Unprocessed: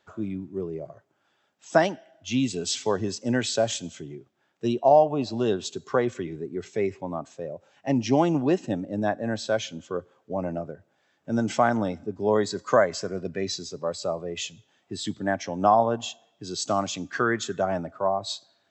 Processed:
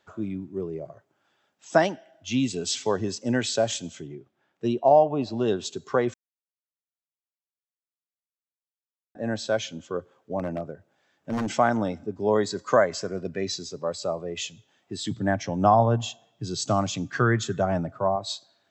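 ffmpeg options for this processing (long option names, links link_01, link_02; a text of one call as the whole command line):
ffmpeg -i in.wav -filter_complex "[0:a]asettb=1/sr,asplit=3[link_01][link_02][link_03];[link_01]atrim=end=4.074[link_04];[link_02]atrim=start=4.07:end=5.48,asetpts=PTS-STARTPTS,afade=type=in:duration=0.004:curve=qsin,afade=type=out:start_time=1.406:duration=0.004:curve=qsin,highshelf=frequency=5100:gain=-9[link_05];[link_03]atrim=start=5.476[link_06];[link_04][link_05]acrossfade=duration=0.004:curve1=hsin:curve2=qsin[link_07];[link_07][link_06]acrossfade=duration=0.004:curve1=qsin:curve2=hsin,asettb=1/sr,asplit=3[link_08][link_09][link_10];[link_08]atrim=end=10.394[link_11];[link_09]atrim=start=10.39:end=11.51,asetpts=PTS-STARTPTS,afade=type=in:duration=0.004:curve=qsin,afade=type=out:start_time=1.116:duration=0.004:curve=qsin,aeval=exprs='0.0841*(abs(mod(val(0)/0.0841+3,4)-2)-1)':channel_layout=same[link_12];[link_10]atrim=start=11.506[link_13];[link_11][link_12]acrossfade=duration=0.004:curve1=hsin:curve2=qsin[link_14];[link_14][link_13]acrossfade=duration=0.004:curve1=qsin:curve2=hsin,asettb=1/sr,asplit=3[link_15][link_16][link_17];[link_15]atrim=end=15.114[link_18];[link_16]atrim=start=15.11:end=18.16,asetpts=PTS-STARTPTS,afade=type=in:duration=0.004:curve=qsin,afade=type=out:start_time=3.046:duration=0.004:curve=qsin,equalizer=frequency=120:width=1.5:gain=13.5[link_19];[link_17]atrim=start=18.156[link_20];[link_18][link_19]acrossfade=duration=0.004:curve1=hsin:curve2=qsin[link_21];[link_21][link_20]acrossfade=duration=0.004:curve1=qsin:curve2=hsin,asplit=3[link_22][link_23][link_24];[link_22]atrim=end=6.14,asetpts=PTS-STARTPTS,afade=type=out:start_time=6.136:duration=0.004:curve=hsin[link_25];[link_23]atrim=start=6.14:end=9.15,asetpts=PTS-STARTPTS,volume=0[link_26];[link_24]atrim=start=9.15,asetpts=PTS-STARTPTS,afade=type=in:duration=0.004:curve=hsin[link_27];[link_25][link_26][link_27]concat=n=3:v=0:a=1" out.wav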